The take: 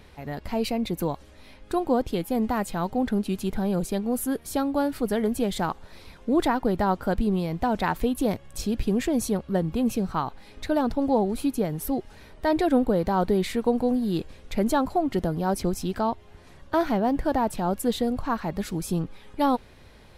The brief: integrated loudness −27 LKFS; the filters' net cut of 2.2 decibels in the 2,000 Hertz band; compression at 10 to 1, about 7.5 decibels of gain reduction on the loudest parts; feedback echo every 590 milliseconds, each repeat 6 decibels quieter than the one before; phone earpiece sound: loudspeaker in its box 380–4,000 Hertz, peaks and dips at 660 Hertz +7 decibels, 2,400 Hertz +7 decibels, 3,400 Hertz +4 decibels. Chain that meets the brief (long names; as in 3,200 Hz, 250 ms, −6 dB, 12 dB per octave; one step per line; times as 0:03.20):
parametric band 2,000 Hz −5.5 dB
downward compressor 10 to 1, threshold −25 dBFS
loudspeaker in its box 380–4,000 Hz, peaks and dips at 660 Hz +7 dB, 2,400 Hz +7 dB, 3,400 Hz +4 dB
repeating echo 590 ms, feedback 50%, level −6 dB
level +5 dB